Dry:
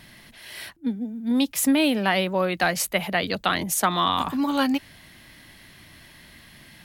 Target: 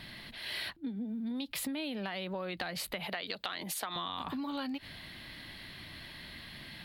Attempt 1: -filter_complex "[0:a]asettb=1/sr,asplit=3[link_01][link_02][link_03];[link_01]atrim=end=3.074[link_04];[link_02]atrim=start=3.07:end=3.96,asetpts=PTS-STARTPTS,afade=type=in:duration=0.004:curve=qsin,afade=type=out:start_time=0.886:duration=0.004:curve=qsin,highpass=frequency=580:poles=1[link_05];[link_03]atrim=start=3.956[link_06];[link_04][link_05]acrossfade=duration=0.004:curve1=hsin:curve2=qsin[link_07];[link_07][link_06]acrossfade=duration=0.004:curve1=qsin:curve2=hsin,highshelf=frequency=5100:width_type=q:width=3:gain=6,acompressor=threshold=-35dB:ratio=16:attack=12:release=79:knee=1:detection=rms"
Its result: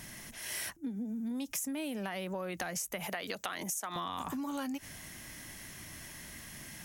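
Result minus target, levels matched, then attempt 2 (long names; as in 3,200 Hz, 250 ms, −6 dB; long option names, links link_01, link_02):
8,000 Hz band +6.5 dB
-filter_complex "[0:a]asettb=1/sr,asplit=3[link_01][link_02][link_03];[link_01]atrim=end=3.074[link_04];[link_02]atrim=start=3.07:end=3.96,asetpts=PTS-STARTPTS,afade=type=in:duration=0.004:curve=qsin,afade=type=out:start_time=0.886:duration=0.004:curve=qsin,highpass=frequency=580:poles=1[link_05];[link_03]atrim=start=3.956[link_06];[link_04][link_05]acrossfade=duration=0.004:curve1=hsin:curve2=qsin[link_07];[link_07][link_06]acrossfade=duration=0.004:curve1=qsin:curve2=hsin,highshelf=frequency=5100:width_type=q:width=3:gain=-6,acompressor=threshold=-35dB:ratio=16:attack=12:release=79:knee=1:detection=rms"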